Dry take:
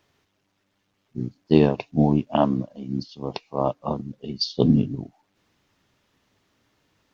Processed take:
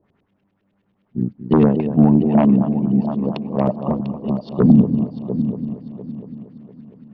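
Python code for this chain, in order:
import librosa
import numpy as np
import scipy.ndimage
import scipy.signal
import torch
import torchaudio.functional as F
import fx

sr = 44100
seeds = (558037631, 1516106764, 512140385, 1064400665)

p1 = fx.tilt_shelf(x, sr, db=3.5, hz=740.0)
p2 = fx.filter_lfo_lowpass(p1, sr, shape='saw_up', hz=9.8, low_hz=410.0, high_hz=3300.0, q=1.9)
p3 = p2 + fx.echo_heads(p2, sr, ms=232, heads='first and third', feedback_pct=49, wet_db=-12.0, dry=0)
p4 = fx.fold_sine(p3, sr, drive_db=6, ceiling_db=1.5)
p5 = fx.peak_eq(p4, sr, hz=200.0, db=10.0, octaves=0.5)
y = F.gain(torch.from_numpy(p5), -10.0).numpy()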